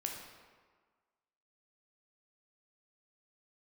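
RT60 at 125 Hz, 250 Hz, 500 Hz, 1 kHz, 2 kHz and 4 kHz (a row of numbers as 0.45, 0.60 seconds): 1.3, 1.5, 1.5, 1.6, 1.3, 1.0 seconds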